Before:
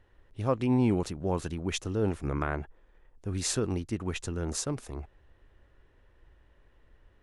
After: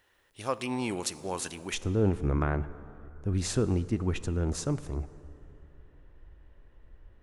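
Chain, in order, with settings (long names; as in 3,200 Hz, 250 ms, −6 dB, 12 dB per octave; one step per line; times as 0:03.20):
spectral tilt +4 dB per octave, from 0:01.73 −1.5 dB per octave
dense smooth reverb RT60 3.1 s, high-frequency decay 0.5×, DRR 15 dB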